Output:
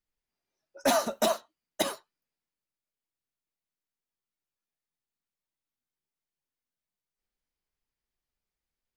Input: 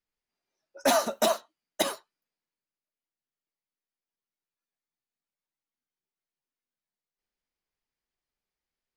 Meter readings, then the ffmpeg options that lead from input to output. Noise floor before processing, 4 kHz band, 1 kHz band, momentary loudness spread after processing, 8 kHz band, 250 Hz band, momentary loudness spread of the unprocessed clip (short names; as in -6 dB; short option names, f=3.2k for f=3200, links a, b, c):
under -85 dBFS, -2.0 dB, -2.0 dB, 8 LU, -2.0 dB, 0.0 dB, 8 LU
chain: -af "lowshelf=f=140:g=8.5,volume=-2dB"